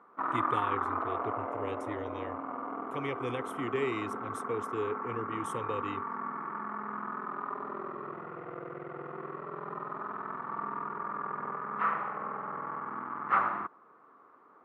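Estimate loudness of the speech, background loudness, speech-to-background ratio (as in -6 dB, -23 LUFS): -38.5 LUFS, -36.0 LUFS, -2.5 dB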